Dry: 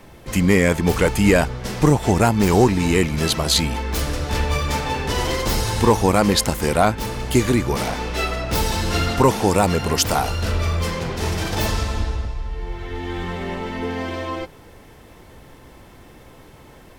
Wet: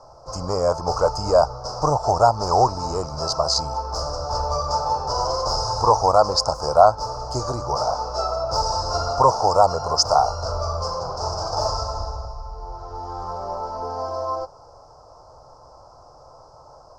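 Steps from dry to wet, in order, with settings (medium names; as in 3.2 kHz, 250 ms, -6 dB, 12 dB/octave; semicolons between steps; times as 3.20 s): FFT filter 140 Hz 0 dB, 200 Hz -13 dB, 380 Hz -4 dB, 610 Hz +14 dB, 1.3 kHz +10 dB, 1.9 kHz -27 dB, 3.5 kHz -22 dB, 5 kHz +15 dB, 12 kHz -24 dB; trim -7.5 dB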